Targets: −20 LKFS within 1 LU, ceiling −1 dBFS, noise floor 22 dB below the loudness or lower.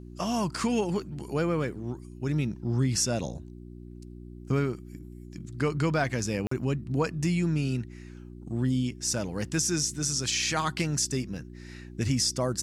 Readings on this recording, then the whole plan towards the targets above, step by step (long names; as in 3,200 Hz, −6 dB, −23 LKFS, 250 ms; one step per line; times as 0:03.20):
number of dropouts 1; longest dropout 44 ms; mains hum 60 Hz; hum harmonics up to 360 Hz; level of the hum −42 dBFS; integrated loudness −29.0 LKFS; sample peak −13.0 dBFS; target loudness −20.0 LKFS
→ repair the gap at 0:06.47, 44 ms
hum removal 60 Hz, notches 6
level +9 dB